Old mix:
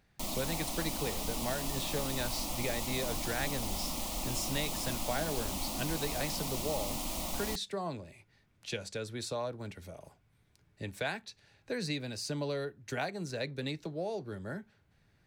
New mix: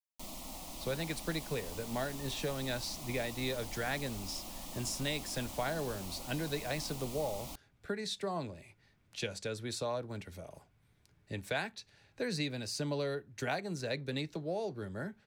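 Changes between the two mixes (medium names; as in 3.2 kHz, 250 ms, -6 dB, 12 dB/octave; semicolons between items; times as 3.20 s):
speech: entry +0.50 s; background -8.5 dB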